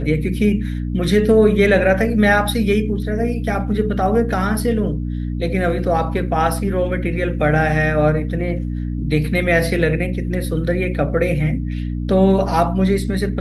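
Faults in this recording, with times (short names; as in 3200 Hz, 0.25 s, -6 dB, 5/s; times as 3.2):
hum 60 Hz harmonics 5 -23 dBFS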